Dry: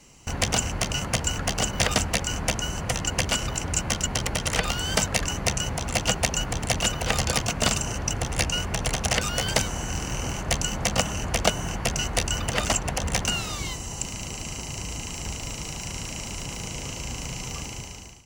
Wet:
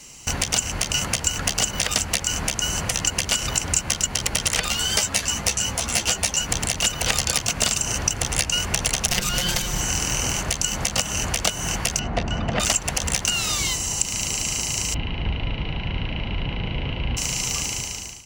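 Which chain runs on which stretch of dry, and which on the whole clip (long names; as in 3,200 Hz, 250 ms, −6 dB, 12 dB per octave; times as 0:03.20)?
0:04.68–0:06.49: double-tracking delay 18 ms −8 dB + string-ensemble chorus
0:09.08–0:09.81: lower of the sound and its delayed copy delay 5.6 ms + low-shelf EQ 200 Hz +8 dB + linearly interpolated sample-rate reduction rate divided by 2×
0:11.99–0:12.60: head-to-tape spacing loss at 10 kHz 37 dB + hollow resonant body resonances 200/680 Hz, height 7 dB, ringing for 20 ms
0:14.94–0:17.17: Butterworth low-pass 3,600 Hz 48 dB per octave + spectral tilt −2 dB per octave + notch filter 1,200 Hz, Q 11
whole clip: high-shelf EQ 2,000 Hz +10.5 dB; downward compressor, threshold −20 dBFS; boost into a limiter +3.5 dB; level −1 dB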